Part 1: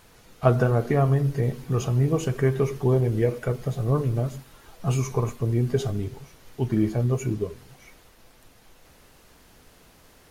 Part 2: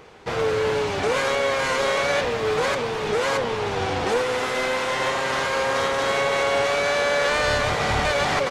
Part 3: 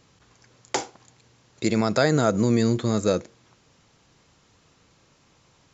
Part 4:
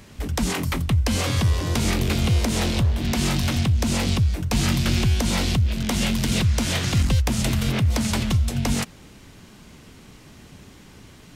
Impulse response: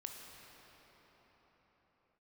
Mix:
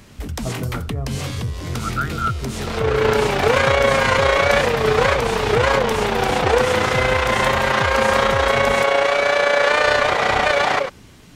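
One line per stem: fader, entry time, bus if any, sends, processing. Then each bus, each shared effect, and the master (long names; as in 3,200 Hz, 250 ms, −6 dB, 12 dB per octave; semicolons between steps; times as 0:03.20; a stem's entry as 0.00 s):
−13.0 dB, 0.00 s, no send, spectral tilt −2 dB per octave
−0.5 dB, 2.40 s, no send, bass and treble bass −11 dB, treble −7 dB; automatic gain control gain up to 11.5 dB; amplitude modulation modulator 29 Hz, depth 40%
+2.5 dB, 0.00 s, no send, four-pole ladder band-pass 1,400 Hz, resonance 85%
+1.0 dB, 0.00 s, no send, downward compressor 6 to 1, threshold −25 dBFS, peak gain reduction 9.5 dB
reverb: not used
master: no processing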